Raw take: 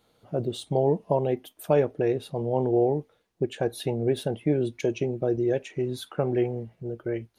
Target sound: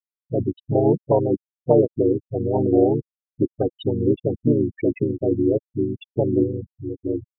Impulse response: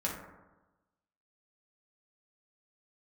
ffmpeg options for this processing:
-filter_complex "[0:a]afftfilt=real='re*gte(hypot(re,im),0.112)':imag='im*gte(hypot(re,im),0.112)':win_size=1024:overlap=0.75,asplit=2[a][b];[b]asetrate=35002,aresample=44100,atempo=1.25992,volume=-1dB[c];[a][c]amix=inputs=2:normalize=0,volume=3dB"

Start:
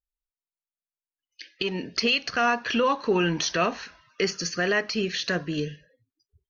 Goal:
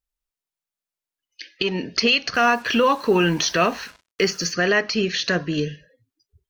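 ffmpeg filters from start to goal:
-filter_complex "[0:a]asettb=1/sr,asplit=3[a][b][c];[a]atrim=end=2.344[d];[b]atrim=start=2.34:end=4.53,asetpts=PTS-STARTPTS,afade=t=in:d=0.004:c=qsin,afade=t=out:st=2.186:d=0.004:c=qsin,acrusher=bits=7:mix=0:aa=0.5[e];[c]atrim=start=4.526[f];[d][e]acrossfade=d=0.004:c1=hsin:c2=qsin[g];[g][f]acrossfade=d=0.004:c1=qsin:c2=hsin,volume=5dB"

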